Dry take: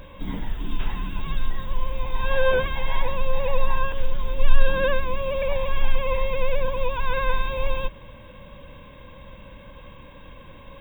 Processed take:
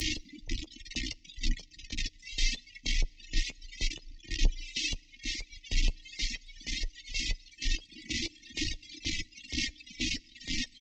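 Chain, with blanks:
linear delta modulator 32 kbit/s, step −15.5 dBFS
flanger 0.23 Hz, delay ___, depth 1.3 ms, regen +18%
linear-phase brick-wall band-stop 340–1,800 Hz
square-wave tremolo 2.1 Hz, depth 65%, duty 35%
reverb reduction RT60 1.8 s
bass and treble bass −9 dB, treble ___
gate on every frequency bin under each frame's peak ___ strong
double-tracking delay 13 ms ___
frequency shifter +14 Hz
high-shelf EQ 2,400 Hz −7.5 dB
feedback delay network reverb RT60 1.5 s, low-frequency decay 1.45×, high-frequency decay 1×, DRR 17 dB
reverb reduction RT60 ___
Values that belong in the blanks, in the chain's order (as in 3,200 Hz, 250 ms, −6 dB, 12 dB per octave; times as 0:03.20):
3.2 ms, +13 dB, −45 dB, −8 dB, 1.3 s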